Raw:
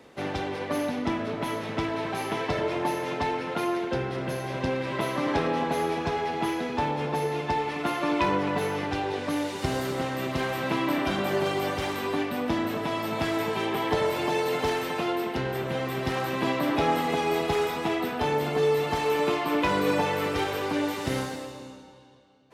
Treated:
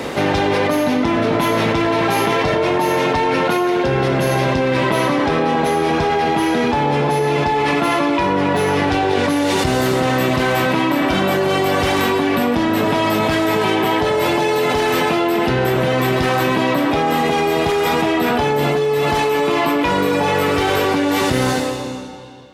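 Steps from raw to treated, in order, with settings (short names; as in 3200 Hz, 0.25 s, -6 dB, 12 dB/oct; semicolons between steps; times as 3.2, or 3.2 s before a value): Doppler pass-by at 4.64, 7 m/s, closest 2.8 m; fast leveller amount 100%; gain +8.5 dB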